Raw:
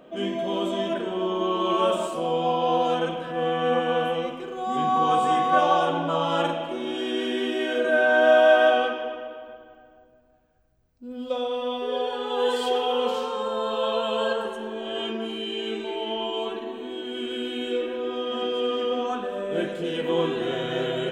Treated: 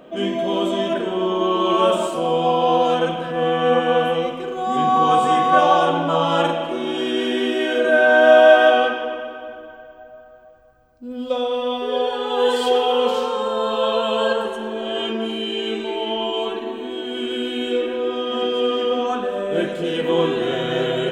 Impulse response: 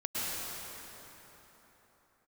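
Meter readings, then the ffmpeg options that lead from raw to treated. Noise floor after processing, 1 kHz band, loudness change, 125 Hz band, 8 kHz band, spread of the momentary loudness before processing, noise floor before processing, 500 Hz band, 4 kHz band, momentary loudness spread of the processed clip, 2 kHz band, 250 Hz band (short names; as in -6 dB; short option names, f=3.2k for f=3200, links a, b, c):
-42 dBFS, +5.5 dB, +5.5 dB, +5.5 dB, n/a, 11 LU, -53 dBFS, +5.5 dB, +5.5 dB, 11 LU, +5.5 dB, +5.5 dB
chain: -filter_complex "[0:a]asplit=2[a][b];[1:a]atrim=start_sample=2205[c];[b][c]afir=irnorm=-1:irlink=0,volume=-23.5dB[d];[a][d]amix=inputs=2:normalize=0,volume=5dB"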